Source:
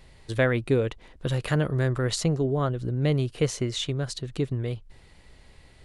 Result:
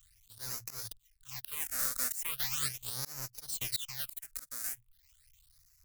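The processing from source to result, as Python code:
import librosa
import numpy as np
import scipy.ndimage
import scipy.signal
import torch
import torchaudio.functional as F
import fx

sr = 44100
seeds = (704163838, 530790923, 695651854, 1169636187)

p1 = fx.halfwave_hold(x, sr)
p2 = scipy.signal.sosfilt(scipy.signal.cheby2(4, 50, [230.0, 610.0], 'bandstop', fs=sr, output='sos'), p1)
p3 = F.preemphasis(torch.from_numpy(p2), 0.8).numpy()
p4 = fx.hum_notches(p3, sr, base_hz=60, count=2)
p5 = fx.dereverb_blind(p4, sr, rt60_s=0.56)
p6 = fx.high_shelf(p5, sr, hz=2100.0, db=8.5)
p7 = fx.fuzz(p6, sr, gain_db=36.0, gate_db=-32.0)
p8 = p6 + (p7 * librosa.db_to_amplitude(-5.5))
p9 = fx.auto_swell(p8, sr, attack_ms=230.0)
p10 = fx.phaser_stages(p9, sr, stages=8, low_hz=110.0, high_hz=3300.0, hz=0.39, feedback_pct=25)
y = p10 * librosa.db_to_amplitude(-8.0)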